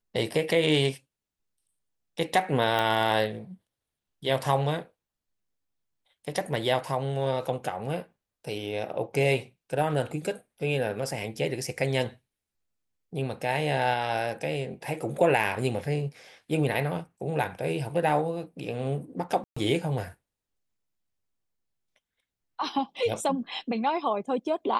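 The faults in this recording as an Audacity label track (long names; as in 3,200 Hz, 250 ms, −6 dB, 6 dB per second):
2.790000	2.790000	click −14 dBFS
19.440000	19.570000	drop-out 125 ms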